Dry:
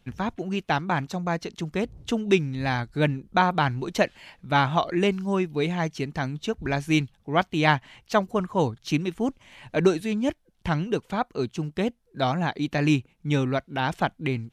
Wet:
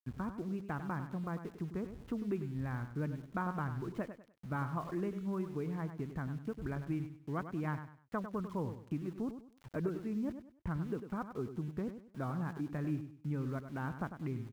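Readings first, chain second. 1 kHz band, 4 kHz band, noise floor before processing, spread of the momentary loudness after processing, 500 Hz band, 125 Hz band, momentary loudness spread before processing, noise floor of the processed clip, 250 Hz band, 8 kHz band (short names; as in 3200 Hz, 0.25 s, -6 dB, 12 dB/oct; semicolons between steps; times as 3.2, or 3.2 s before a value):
-17.5 dB, under -25 dB, -65 dBFS, 4 LU, -16.0 dB, -10.5 dB, 7 LU, -65 dBFS, -11.5 dB, under -20 dB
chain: bell 770 Hz -14.5 dB 1.3 oct; compressor 2.5:1, threshold -32 dBFS, peak gain reduction 10 dB; ladder low-pass 1400 Hz, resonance 40%; sample gate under -56.5 dBFS; feedback echo 99 ms, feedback 30%, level -10 dB; gain +3.5 dB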